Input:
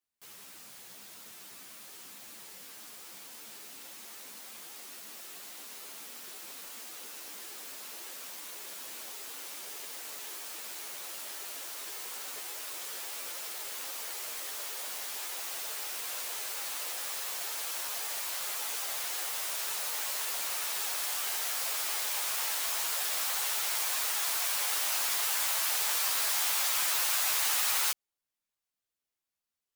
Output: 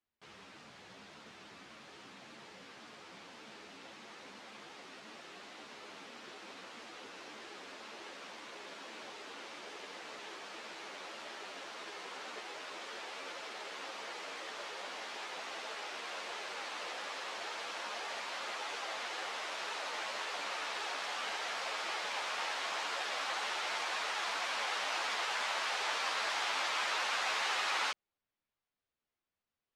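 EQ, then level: tape spacing loss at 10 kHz 38 dB; treble shelf 2.5 kHz +8 dB; +5.5 dB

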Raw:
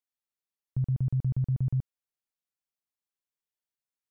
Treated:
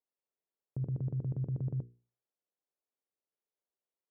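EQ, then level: band-pass filter 450 Hz, Q 1.6; hum notches 60/120/180/240/300/360/420/480 Hz; +8.0 dB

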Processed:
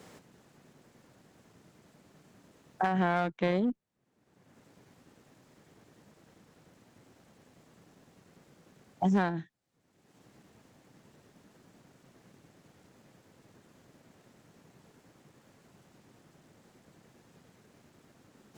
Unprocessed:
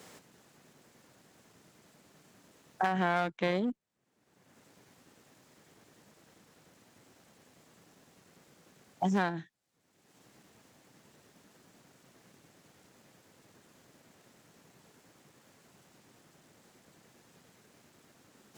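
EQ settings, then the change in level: tilt EQ -1.5 dB/octave; 0.0 dB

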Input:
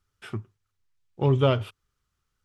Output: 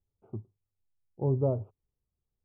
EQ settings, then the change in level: inverse Chebyshev low-pass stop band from 1.6 kHz, stop band 40 dB; -6.0 dB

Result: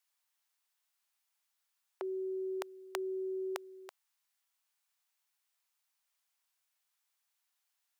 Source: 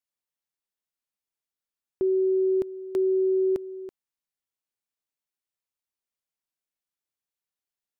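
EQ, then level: high-pass 750 Hz 24 dB/octave; +9.0 dB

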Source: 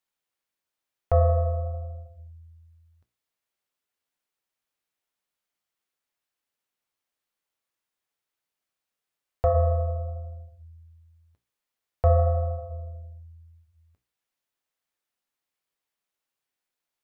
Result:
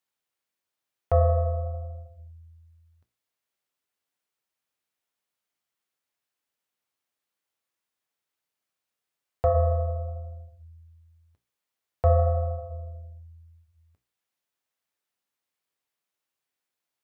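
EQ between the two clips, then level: high-pass 57 Hz; 0.0 dB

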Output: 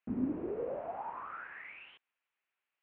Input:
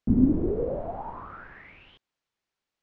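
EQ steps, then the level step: band-pass filter 2 kHz, Q 0.82; distance through air 430 m; peaking EQ 2.6 kHz +7 dB 0.49 oct; +3.5 dB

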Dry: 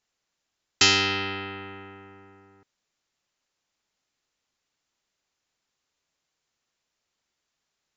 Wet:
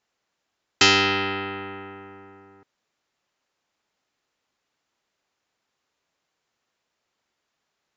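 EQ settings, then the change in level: high-pass 800 Hz 6 dB/octave; tilt EQ -3.5 dB/octave; +8.0 dB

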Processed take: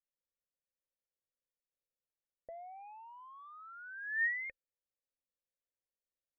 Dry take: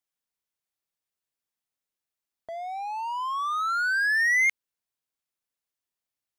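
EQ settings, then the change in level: cascade formant filter e; tilt EQ -4 dB/octave; 0.0 dB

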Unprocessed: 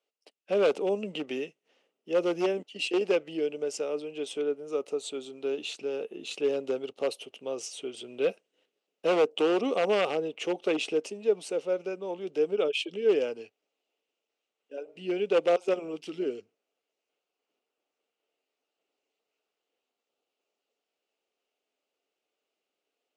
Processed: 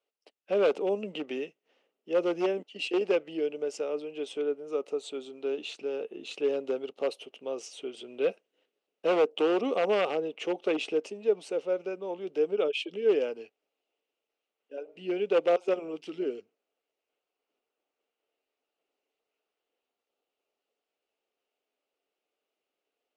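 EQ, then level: low-pass 3.4 kHz 6 dB/octave; peaking EQ 110 Hz -8.5 dB 1.1 oct; 0.0 dB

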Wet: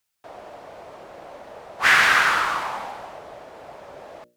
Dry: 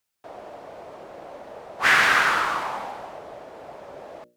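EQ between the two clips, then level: peaking EQ 330 Hz -4.5 dB 2.7 oct; +2.5 dB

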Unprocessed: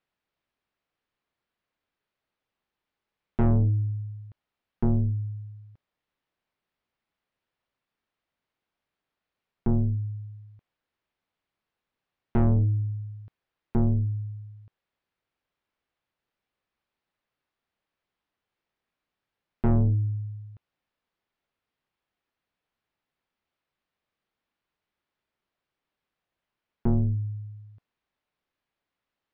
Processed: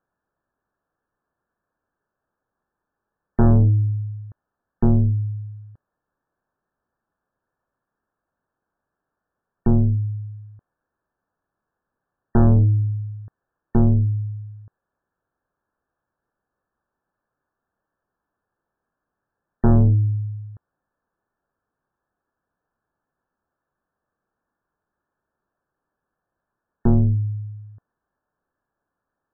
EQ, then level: brick-wall FIR low-pass 1.8 kHz; +7.0 dB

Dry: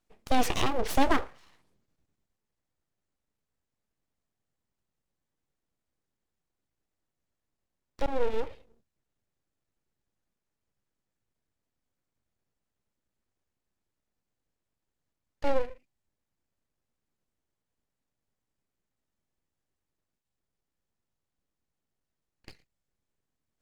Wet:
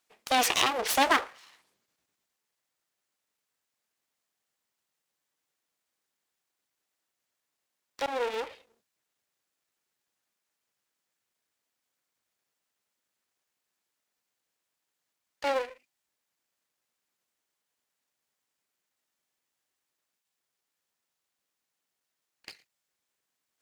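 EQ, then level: high-pass 1.4 kHz 6 dB/octave; +8.5 dB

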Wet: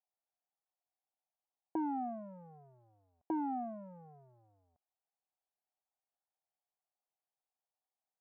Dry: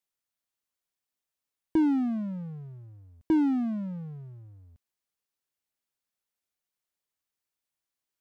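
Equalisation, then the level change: band-pass filter 750 Hz, Q 5.3; distance through air 360 m; +8.0 dB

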